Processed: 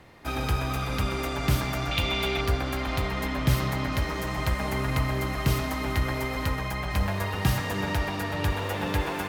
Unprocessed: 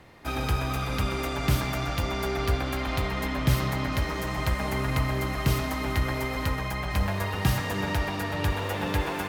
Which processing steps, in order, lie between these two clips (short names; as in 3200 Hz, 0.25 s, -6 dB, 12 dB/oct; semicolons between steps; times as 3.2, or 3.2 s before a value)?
1.91–2.41 band shelf 3000 Hz +10 dB 1 oct